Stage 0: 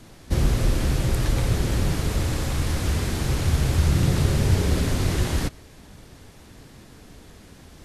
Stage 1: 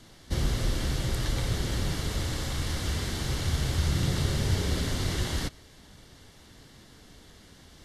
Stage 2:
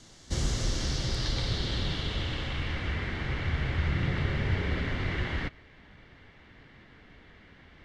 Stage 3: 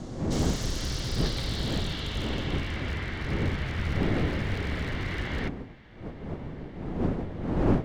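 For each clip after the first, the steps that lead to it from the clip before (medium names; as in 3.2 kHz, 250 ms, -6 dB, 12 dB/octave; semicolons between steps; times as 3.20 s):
peaking EQ 3.6 kHz +7 dB 2.1 oct; band-stop 2.5 kHz, Q 7.5; trim -7 dB
low-pass sweep 7 kHz -> 2.2 kHz, 0.45–2.98 s; trim -2 dB
one-sided wavefolder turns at -27 dBFS; wind noise 300 Hz -32 dBFS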